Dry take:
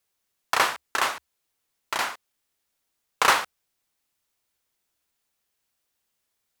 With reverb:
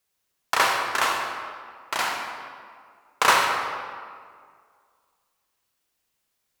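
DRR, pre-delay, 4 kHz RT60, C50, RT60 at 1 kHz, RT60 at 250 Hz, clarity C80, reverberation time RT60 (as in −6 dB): 1.0 dB, 39 ms, 1.2 s, 1.5 dB, 2.0 s, 2.1 s, 3.5 dB, 2.0 s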